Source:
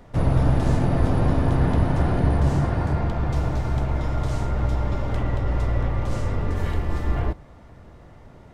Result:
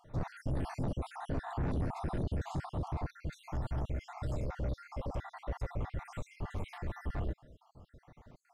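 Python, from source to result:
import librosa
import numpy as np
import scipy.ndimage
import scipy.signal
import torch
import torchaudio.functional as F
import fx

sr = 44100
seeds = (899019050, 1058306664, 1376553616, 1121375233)

y = fx.spec_dropout(x, sr, seeds[0], share_pct=61)
y = fx.peak_eq(y, sr, hz=530.0, db=9.0, octaves=0.39, at=(4.33, 5.71))
y = 10.0 ** (-21.0 / 20.0) * np.tanh(y / 10.0 ** (-21.0 / 20.0))
y = F.gain(torch.from_numpy(y), -8.0).numpy()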